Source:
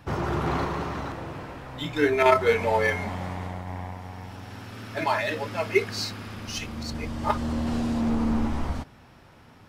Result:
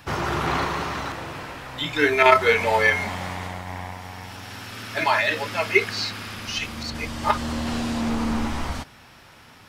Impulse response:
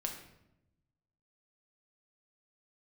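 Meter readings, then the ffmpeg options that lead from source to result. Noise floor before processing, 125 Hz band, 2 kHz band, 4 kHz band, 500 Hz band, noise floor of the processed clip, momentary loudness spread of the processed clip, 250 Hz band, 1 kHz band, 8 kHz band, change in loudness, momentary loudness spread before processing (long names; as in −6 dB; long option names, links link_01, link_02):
−52 dBFS, −1.0 dB, +7.5 dB, +7.0 dB, +1.0 dB, −49 dBFS, 18 LU, −0.5 dB, +4.5 dB, +4.5 dB, +4.0 dB, 17 LU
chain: -filter_complex "[0:a]acrossover=split=3900[link_01][link_02];[link_02]acompressor=threshold=-48dB:ratio=4:attack=1:release=60[link_03];[link_01][link_03]amix=inputs=2:normalize=0,tiltshelf=frequency=1100:gain=-6,volume=5dB"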